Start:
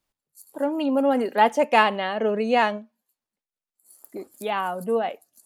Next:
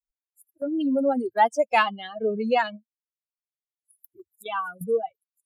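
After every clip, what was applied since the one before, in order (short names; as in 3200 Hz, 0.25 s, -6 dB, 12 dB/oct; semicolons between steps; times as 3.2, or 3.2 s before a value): per-bin expansion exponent 3; gate -46 dBFS, range -8 dB; in parallel at +1 dB: compressor, threshold -33 dBFS, peak gain reduction 16.5 dB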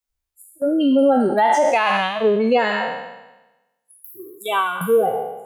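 spectral trails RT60 1.05 s; limiter -15 dBFS, peak gain reduction 11.5 dB; gain +7 dB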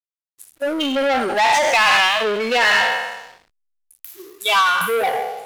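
overdrive pedal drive 17 dB, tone 2700 Hz, clips at -7.5 dBFS; backlash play -37 dBFS; tilt shelf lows -9 dB, about 1200 Hz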